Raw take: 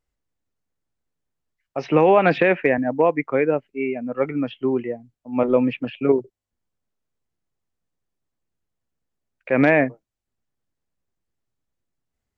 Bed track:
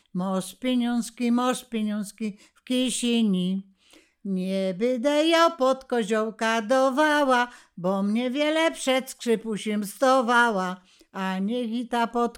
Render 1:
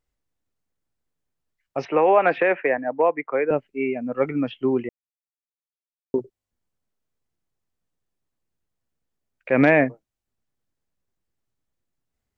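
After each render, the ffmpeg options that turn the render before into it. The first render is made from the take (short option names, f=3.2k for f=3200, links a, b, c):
-filter_complex "[0:a]asettb=1/sr,asplit=3[a][b][c];[a]atrim=end=1.854[d];[b]atrim=start=1.85:end=3.51,asetpts=PTS-STARTPTS,afade=t=in:d=0.004:c=qsin,afade=t=out:st=1.656:d=0.004:c=qsin,acrossover=split=370 2600:gain=0.158 1 0.141[e][f][g];[e][f][g]amix=inputs=3:normalize=0[h];[c]atrim=start=3.506[i];[d][h]acrossfade=d=0.004:c1=hsin:c2=qsin[j];[j][i]acrossfade=d=0.004:c1=qsin:c2=hsin,asplit=3[k][l][m];[k]atrim=end=4.89,asetpts=PTS-STARTPTS,afade=t=out:st=4.886:d=0.004:c=hsin[n];[l]atrim=start=4.89:end=6.14,asetpts=PTS-STARTPTS,volume=0[o];[m]atrim=start=6.14,asetpts=PTS-STARTPTS,afade=t=in:d=0.004:c=hsin[p];[n][o][p]concat=n=3:v=0:a=1"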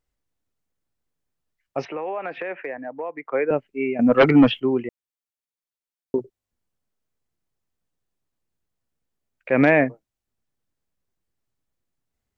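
-filter_complex "[0:a]asettb=1/sr,asplit=3[a][b][c];[a]atrim=end=1.874[d];[b]atrim=start=1.87:end=3.33,asetpts=PTS-STARTPTS,afade=t=in:d=0.004:c=qsin,afade=t=out:st=1.456:d=0.004:c=qsin,acompressor=threshold=-32dB:ratio=2.5:attack=3.2:release=140:knee=1:detection=peak[e];[c]atrim=start=3.326[f];[d][e]acrossfade=d=0.004:c1=hsin:c2=qsin[g];[g][f]acrossfade=d=0.004:c1=qsin:c2=hsin,asettb=1/sr,asplit=3[h][i][j];[h]atrim=end=3.994[k];[i]atrim=start=3.99:end=4.6,asetpts=PTS-STARTPTS,afade=t=in:d=0.004:c=qsin,afade=t=out:st=0.606:d=0.004:c=qsin,aeval=exprs='0.422*sin(PI/2*2.82*val(0)/0.422)':c=same[l];[j]atrim=start=4.596[m];[k][l]acrossfade=d=0.004:c1=hsin:c2=qsin[n];[n][m]acrossfade=d=0.004:c1=qsin:c2=hsin"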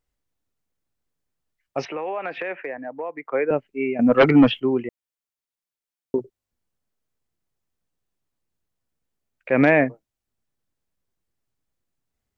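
-filter_complex "[0:a]asettb=1/sr,asplit=3[a][b][c];[a]atrim=end=1.774[d];[b]atrim=start=1.77:end=2.56,asetpts=PTS-STARTPTS,afade=t=in:d=0.004:c=qsin,afade=t=out:st=0.786:d=0.004:c=qsin,highshelf=f=2.8k:g=7.5[e];[c]atrim=start=2.556[f];[d][e]acrossfade=d=0.004:c1=hsin:c2=qsin[g];[g][f]acrossfade=d=0.004:c1=qsin:c2=hsin"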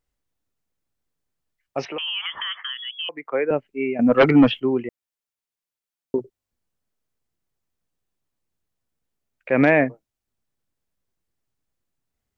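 -filter_complex "[0:a]asettb=1/sr,asplit=3[a][b][c];[a]atrim=end=1.984[d];[b]atrim=start=1.98:end=3.09,asetpts=PTS-STARTPTS,afade=t=in:d=0.004:c=qsin,afade=t=out:st=1.106:d=0.004:c=qsin,lowpass=f=3.1k:t=q:w=0.5098,lowpass=f=3.1k:t=q:w=0.6013,lowpass=f=3.1k:t=q:w=0.9,lowpass=f=3.1k:t=q:w=2.563,afreqshift=-3600[e];[c]atrim=start=3.086[f];[d][e]acrossfade=d=0.004:c1=hsin:c2=qsin[g];[g][f]acrossfade=d=0.004:c1=qsin:c2=hsin"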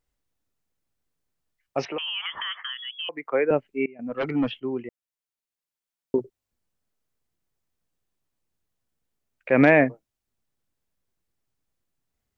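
-filter_complex "[0:a]asettb=1/sr,asplit=3[a][b][c];[a]atrim=end=1.854[d];[b]atrim=start=1.85:end=3.13,asetpts=PTS-STARTPTS,afade=t=in:d=0.004:c=qsin,afade=t=out:st=1.276:d=0.004:c=qsin,highshelf=f=4k:g=-9[e];[c]atrim=start=3.126[f];[d][e]acrossfade=d=0.004:c1=hsin:c2=qsin[g];[g][f]acrossfade=d=0.004:c1=qsin:c2=hsin,asplit=2[h][i];[h]atrim=end=3.86,asetpts=PTS-STARTPTS,afade=t=out:st=3.856:d=0.004:c=hsin:silence=0.0707946[j];[i]atrim=start=3.86,asetpts=PTS-STARTPTS,afade=t=in:d=2.33:silence=0.0707946[k];[j][k]concat=n=2:v=0:a=1"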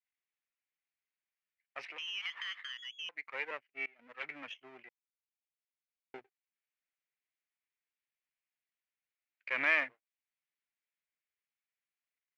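-af "aeval=exprs='if(lt(val(0),0),0.251*val(0),val(0))':c=same,bandpass=f=2.2k:t=q:w=2.8:csg=0"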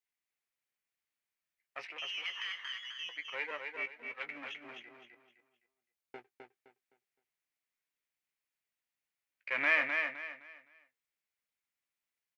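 -filter_complex "[0:a]asplit=2[a][b];[b]adelay=17,volume=-10.5dB[c];[a][c]amix=inputs=2:normalize=0,asplit=2[d][e];[e]aecho=0:1:258|516|774|1032:0.562|0.169|0.0506|0.0152[f];[d][f]amix=inputs=2:normalize=0"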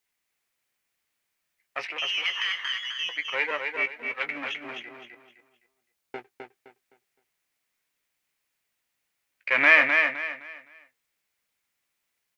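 -af "volume=11.5dB"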